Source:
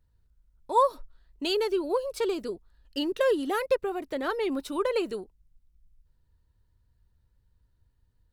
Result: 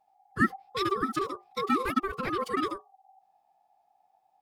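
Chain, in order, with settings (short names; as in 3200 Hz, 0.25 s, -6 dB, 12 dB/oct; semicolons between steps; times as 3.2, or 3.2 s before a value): notches 60/120/180/240/300/360/420 Hz; ring modulator 780 Hz; time stretch by phase-locked vocoder 0.53×; gain +3 dB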